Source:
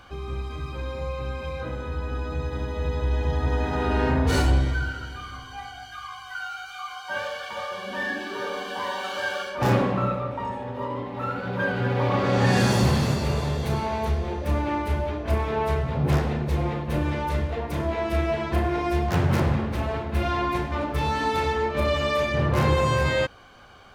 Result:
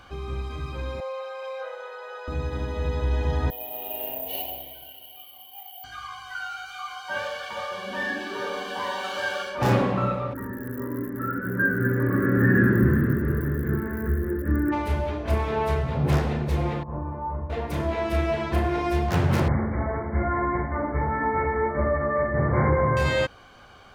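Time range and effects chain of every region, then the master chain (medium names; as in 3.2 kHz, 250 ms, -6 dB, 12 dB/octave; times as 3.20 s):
1.00–2.28 s: Chebyshev high-pass 460 Hz, order 6 + treble shelf 3.9 kHz -5.5 dB + comb 7.4 ms, depth 36%
3.50–5.84 s: two resonant band-passes 1.4 kHz, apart 2.1 oct + flutter echo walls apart 10.6 m, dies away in 0.29 s + careless resampling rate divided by 3×, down filtered, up zero stuff
10.33–14.71 s: low-pass 1.4 kHz + crackle 130 per s -34 dBFS + FFT filter 160 Hz 0 dB, 340 Hz +8 dB, 780 Hz -23 dB, 1.7 kHz +13 dB, 2.4 kHz -12 dB, 4.7 kHz -19 dB, 6.8 kHz -12 dB, 13 kHz +15 dB
16.83–17.50 s: four-pole ladder low-pass 1.1 kHz, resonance 65% + bass shelf 220 Hz +6 dB
19.48–22.97 s: brick-wall FIR low-pass 2.3 kHz + doubling 46 ms -13 dB
whole clip: none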